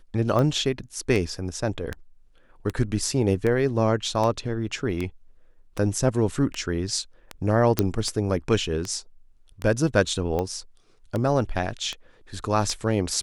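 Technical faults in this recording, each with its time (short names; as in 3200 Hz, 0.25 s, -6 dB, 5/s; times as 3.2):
tick 78 rpm -15 dBFS
7.79 pop -5 dBFS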